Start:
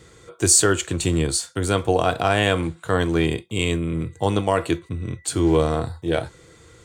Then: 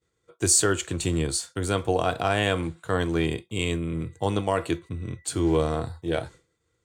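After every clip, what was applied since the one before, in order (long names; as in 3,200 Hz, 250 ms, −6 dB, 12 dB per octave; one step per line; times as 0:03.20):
downward expander −35 dBFS
level −4.5 dB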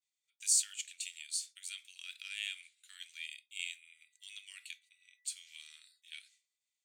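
elliptic high-pass filter 2,300 Hz, stop band 70 dB
level −8 dB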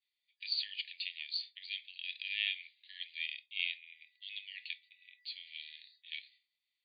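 brick-wall band-pass 1,700–4,800 Hz
level +5.5 dB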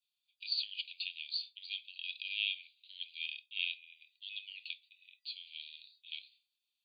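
Chebyshev high-pass filter 2,500 Hz, order 6
level +1 dB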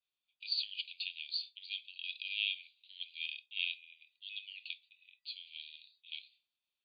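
low-pass that shuts in the quiet parts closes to 2,900 Hz, open at −33.5 dBFS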